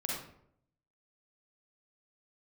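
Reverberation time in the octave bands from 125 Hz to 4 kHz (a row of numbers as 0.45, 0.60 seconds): 0.95, 0.80, 0.75, 0.60, 0.50, 0.40 seconds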